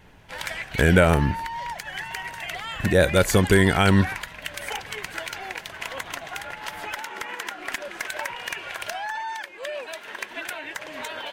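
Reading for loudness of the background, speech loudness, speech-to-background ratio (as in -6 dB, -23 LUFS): -32.5 LUFS, -20.0 LUFS, 12.5 dB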